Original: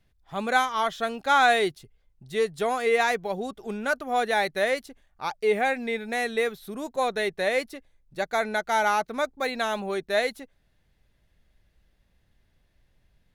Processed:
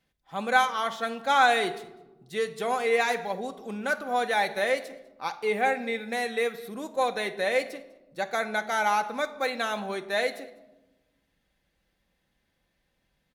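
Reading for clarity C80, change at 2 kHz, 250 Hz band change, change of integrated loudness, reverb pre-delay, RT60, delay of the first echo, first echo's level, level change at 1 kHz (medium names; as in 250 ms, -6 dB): 16.0 dB, -1.0 dB, -2.5 dB, -1.5 dB, 4 ms, 1.1 s, 200 ms, -23.5 dB, -1.0 dB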